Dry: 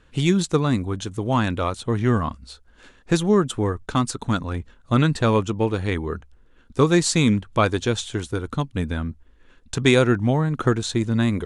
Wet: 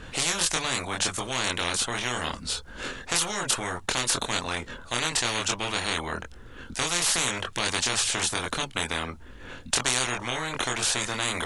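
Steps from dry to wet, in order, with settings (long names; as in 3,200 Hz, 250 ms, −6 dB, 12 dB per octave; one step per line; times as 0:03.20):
multi-voice chorus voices 4, 0.25 Hz, delay 24 ms, depth 1.3 ms
every bin compressed towards the loudest bin 10 to 1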